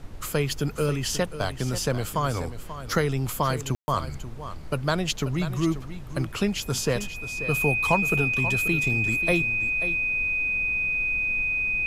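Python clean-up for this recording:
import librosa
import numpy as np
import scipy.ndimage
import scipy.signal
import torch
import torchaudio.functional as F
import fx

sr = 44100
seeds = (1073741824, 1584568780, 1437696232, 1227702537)

y = fx.notch(x, sr, hz=2500.0, q=30.0)
y = fx.fix_ambience(y, sr, seeds[0], print_start_s=2.42, print_end_s=2.92, start_s=3.75, end_s=3.88)
y = fx.noise_reduce(y, sr, print_start_s=4.17, print_end_s=4.67, reduce_db=30.0)
y = fx.fix_echo_inverse(y, sr, delay_ms=536, level_db=-12.0)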